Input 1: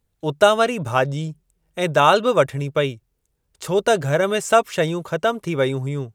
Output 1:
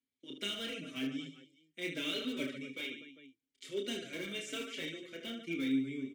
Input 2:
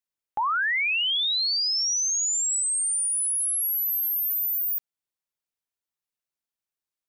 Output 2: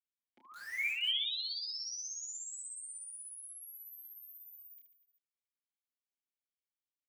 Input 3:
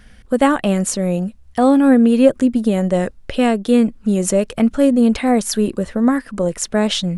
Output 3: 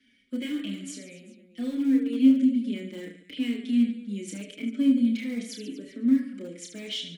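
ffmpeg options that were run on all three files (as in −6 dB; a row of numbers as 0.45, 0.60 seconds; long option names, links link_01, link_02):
-filter_complex "[0:a]asplit=3[link_01][link_02][link_03];[link_01]bandpass=frequency=270:width_type=q:width=8,volume=0dB[link_04];[link_02]bandpass=frequency=2290:width_type=q:width=8,volume=-6dB[link_05];[link_03]bandpass=frequency=3010:width_type=q:width=8,volume=-9dB[link_06];[link_04][link_05][link_06]amix=inputs=3:normalize=0,bass=frequency=250:gain=-8,treble=frequency=4000:gain=10,aecho=1:1:30|75|142.5|243.8|395.6:0.631|0.398|0.251|0.158|0.1,acrossover=split=250|680|1500[link_07][link_08][link_09][link_10];[link_09]aeval=exprs='(mod(224*val(0)+1,2)-1)/224':channel_layout=same[link_11];[link_07][link_08][link_11][link_10]amix=inputs=4:normalize=0,asplit=2[link_12][link_13];[link_13]adelay=4.8,afreqshift=-0.83[link_14];[link_12][link_14]amix=inputs=2:normalize=1"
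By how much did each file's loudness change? −19.0, −14.5, −10.0 LU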